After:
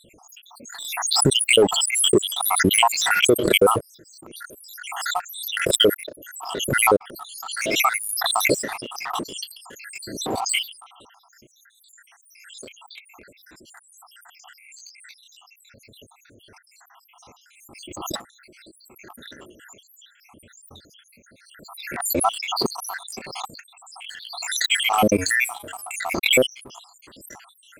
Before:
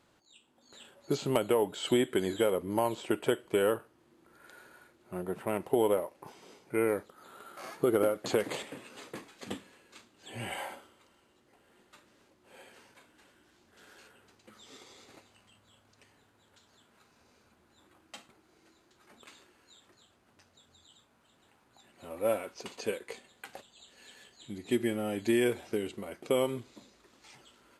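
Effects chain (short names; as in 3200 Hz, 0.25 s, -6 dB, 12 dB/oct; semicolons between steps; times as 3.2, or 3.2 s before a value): random spectral dropouts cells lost 83%; sample leveller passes 1; 25.1–25.94 resonator 92 Hz, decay 0.29 s, harmonics odd, mix 40%; maximiser +27.5 dB; backwards sustainer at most 45 dB/s; gain -7 dB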